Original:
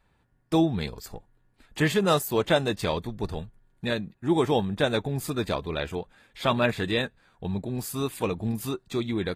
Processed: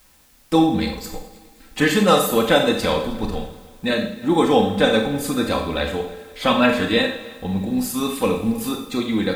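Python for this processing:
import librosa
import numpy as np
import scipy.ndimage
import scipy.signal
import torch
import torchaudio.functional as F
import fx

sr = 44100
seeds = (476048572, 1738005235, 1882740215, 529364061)

p1 = x + 0.7 * np.pad(x, (int(3.9 * sr / 1000.0), 0))[:len(x)]
p2 = fx.vibrato(p1, sr, rate_hz=2.6, depth_cents=32.0)
p3 = fx.rev_schroeder(p2, sr, rt60_s=0.58, comb_ms=28, drr_db=3.5)
p4 = fx.quant_dither(p3, sr, seeds[0], bits=10, dither='triangular')
p5 = p4 + fx.echo_heads(p4, sr, ms=104, heads='second and third', feedback_pct=46, wet_db=-22.0, dry=0)
y = F.gain(torch.from_numpy(p5), 4.5).numpy()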